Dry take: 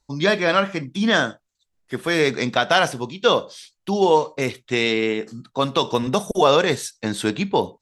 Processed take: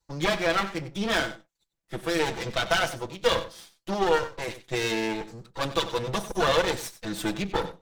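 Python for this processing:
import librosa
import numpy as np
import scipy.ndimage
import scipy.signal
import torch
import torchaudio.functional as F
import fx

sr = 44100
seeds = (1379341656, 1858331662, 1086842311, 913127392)

y = fx.lower_of_two(x, sr, delay_ms=6.0)
y = y + 10.0 ** (-14.5 / 20.0) * np.pad(y, (int(94 * sr / 1000.0), 0))[:len(y)]
y = y * librosa.db_to_amplitude(-4.5)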